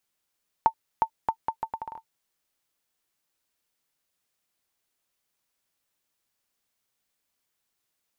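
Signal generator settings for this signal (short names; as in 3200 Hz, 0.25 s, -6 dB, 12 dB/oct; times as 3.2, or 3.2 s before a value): bouncing ball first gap 0.36 s, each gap 0.74, 897 Hz, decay 78 ms -8.5 dBFS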